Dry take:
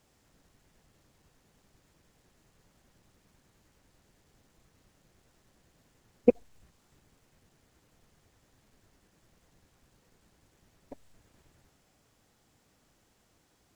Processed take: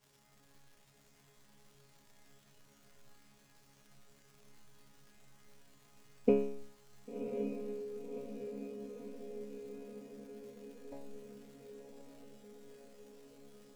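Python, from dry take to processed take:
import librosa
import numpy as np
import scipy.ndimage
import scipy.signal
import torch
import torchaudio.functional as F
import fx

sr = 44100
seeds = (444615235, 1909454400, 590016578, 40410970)

y = fx.resonator_bank(x, sr, root=49, chord='fifth', decay_s=0.61)
y = fx.echo_diffused(y, sr, ms=1083, feedback_pct=65, wet_db=-5.5)
y = fx.dmg_crackle(y, sr, seeds[0], per_s=330.0, level_db=-71.0)
y = y * 10.0 ** (16.0 / 20.0)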